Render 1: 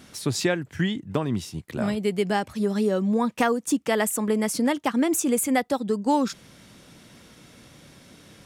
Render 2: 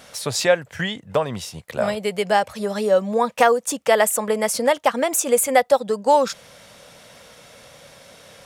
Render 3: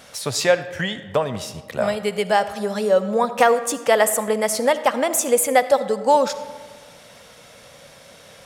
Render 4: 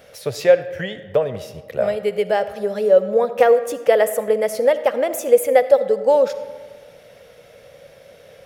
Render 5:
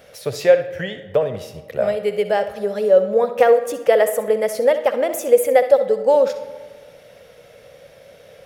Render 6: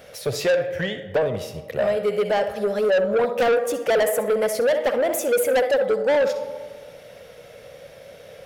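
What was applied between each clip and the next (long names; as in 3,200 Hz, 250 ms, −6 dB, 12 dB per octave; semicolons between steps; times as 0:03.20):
low shelf with overshoot 420 Hz −7.5 dB, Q 3; level +5.5 dB
comb and all-pass reverb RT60 1.4 s, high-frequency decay 0.55×, pre-delay 25 ms, DRR 12.5 dB
octave-band graphic EQ 250/500/1,000/4,000/8,000 Hz −7/+9/−10/−5/−12 dB
flutter between parallel walls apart 11 metres, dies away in 0.28 s
soft clipping −17.5 dBFS, distortion −7 dB; level +2 dB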